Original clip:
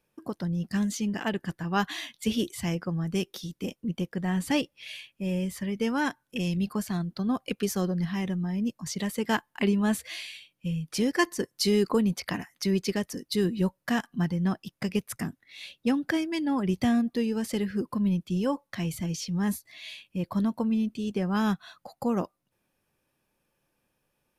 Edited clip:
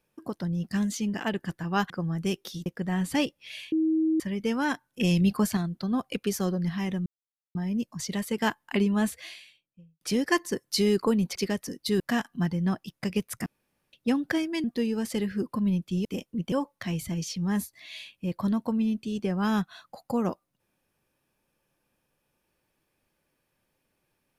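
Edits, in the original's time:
1.9–2.79 cut
3.55–4.02 move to 18.44
5.08–5.56 bleep 318 Hz -21 dBFS
6.37–6.93 gain +5.5 dB
8.42 insert silence 0.49 s
9.83–10.88 studio fade out
12.23–12.82 cut
13.46–13.79 cut
15.25–15.72 room tone
16.43–17.03 cut

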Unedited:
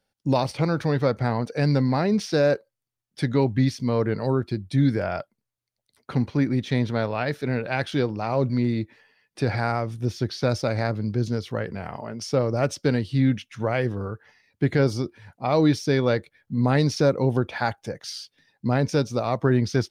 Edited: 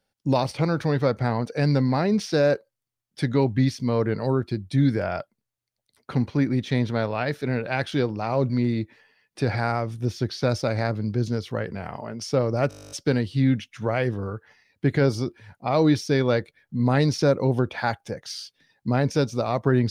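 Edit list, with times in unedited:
12.69 stutter 0.02 s, 12 plays

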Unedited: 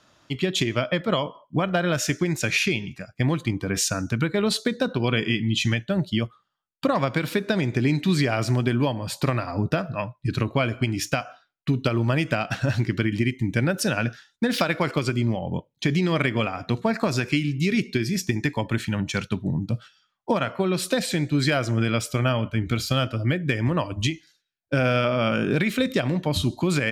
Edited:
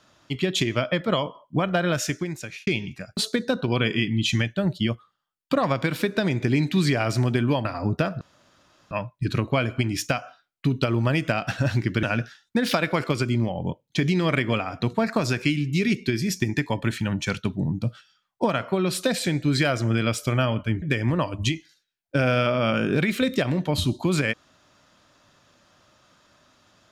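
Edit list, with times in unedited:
1.9–2.67 fade out
3.17–4.49 cut
8.97–9.38 cut
9.94 insert room tone 0.70 s
13.06–13.9 cut
22.69–23.4 cut

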